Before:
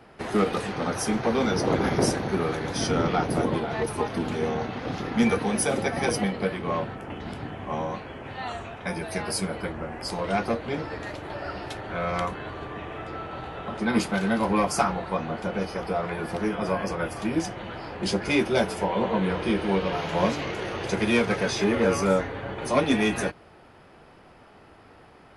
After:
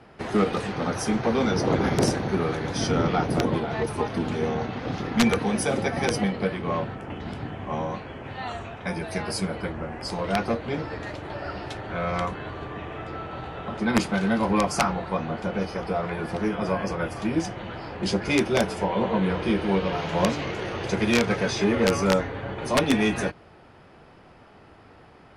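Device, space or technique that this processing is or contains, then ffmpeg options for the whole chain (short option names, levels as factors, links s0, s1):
overflowing digital effects unit: -af "equalizer=f=110:w=0.64:g=3,aeval=exprs='(mod(3.55*val(0)+1,2)-1)/3.55':c=same,lowpass=8800"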